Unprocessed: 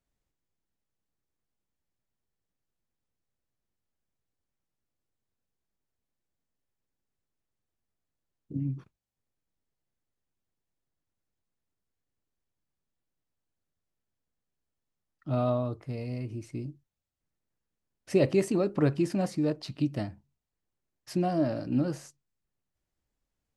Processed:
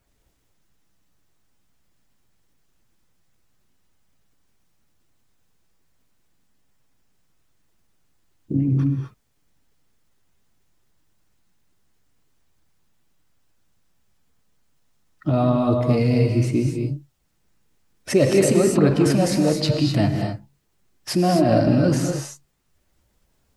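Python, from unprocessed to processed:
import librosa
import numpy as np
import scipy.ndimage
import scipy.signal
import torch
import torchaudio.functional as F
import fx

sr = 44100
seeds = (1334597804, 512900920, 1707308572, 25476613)

p1 = fx.spec_quant(x, sr, step_db=15)
p2 = fx.over_compress(p1, sr, threshold_db=-33.0, ratio=-0.5)
p3 = p1 + (p2 * librosa.db_to_amplitude(1.5))
p4 = fx.rev_gated(p3, sr, seeds[0], gate_ms=280, shape='rising', drr_db=2.5)
y = p4 * librosa.db_to_amplitude(6.5)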